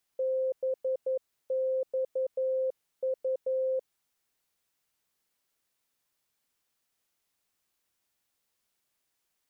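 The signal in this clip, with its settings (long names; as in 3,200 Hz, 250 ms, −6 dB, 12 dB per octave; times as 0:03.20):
Morse code "BXU" 11 words per minute 522 Hz −26 dBFS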